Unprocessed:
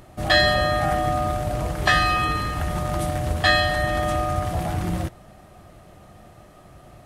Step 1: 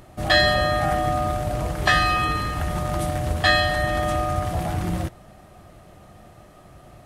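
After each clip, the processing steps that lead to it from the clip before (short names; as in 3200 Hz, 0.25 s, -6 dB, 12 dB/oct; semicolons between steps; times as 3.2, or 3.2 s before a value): nothing audible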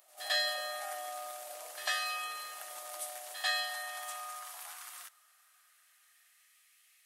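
differentiator; pre-echo 97 ms -14 dB; high-pass sweep 590 Hz -> 2100 Hz, 2.93–6.7; gain -4.5 dB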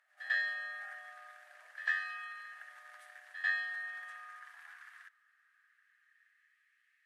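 band-pass 1700 Hz, Q 8; gain +7 dB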